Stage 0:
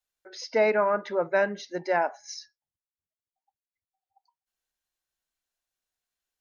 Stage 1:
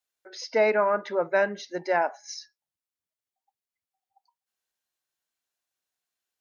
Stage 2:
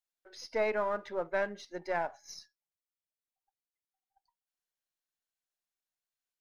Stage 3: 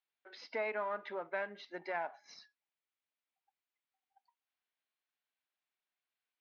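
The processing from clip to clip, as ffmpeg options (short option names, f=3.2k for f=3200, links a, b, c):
-af "highpass=f=170:p=1,volume=1dB"
-af "aeval=exprs='if(lt(val(0),0),0.708*val(0),val(0))':c=same,volume=-7.5dB"
-af "acompressor=threshold=-39dB:ratio=2.5,highpass=280,equalizer=f=360:t=q:w=4:g=-4,equalizer=f=520:t=q:w=4:g=-6,equalizer=f=2.3k:t=q:w=4:g=3,lowpass=f=3.8k:w=0.5412,lowpass=f=3.8k:w=1.3066,volume=3.5dB"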